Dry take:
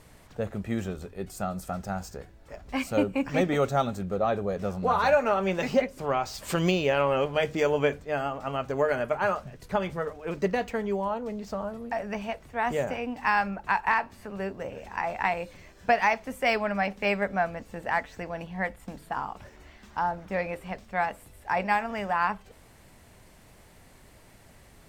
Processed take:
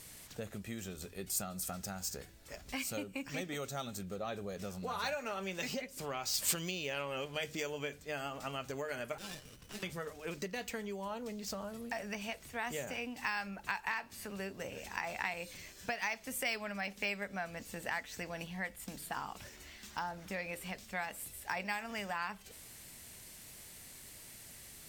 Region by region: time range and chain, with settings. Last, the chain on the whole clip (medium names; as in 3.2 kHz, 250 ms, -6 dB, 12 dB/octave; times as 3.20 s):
9.18–9.83 s: frequency inversion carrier 3 kHz + compression 2:1, threshold -43 dBFS + sliding maximum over 17 samples
whole clip: peaking EQ 890 Hz -9.5 dB 2.5 oct; compression 5:1, threshold -38 dBFS; tilt EQ +2.5 dB/octave; trim +3 dB